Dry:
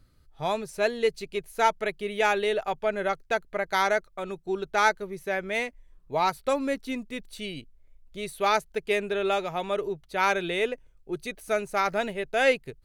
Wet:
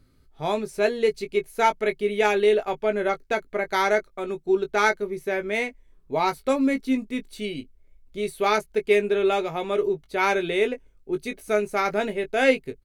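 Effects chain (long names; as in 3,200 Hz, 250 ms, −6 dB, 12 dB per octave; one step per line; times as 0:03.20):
double-tracking delay 19 ms −8 dB
hollow resonant body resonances 260/390/2,200 Hz, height 8 dB, ringing for 40 ms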